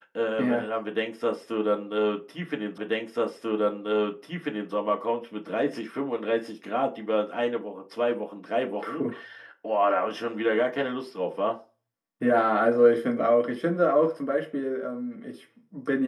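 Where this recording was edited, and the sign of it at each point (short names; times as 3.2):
2.78 repeat of the last 1.94 s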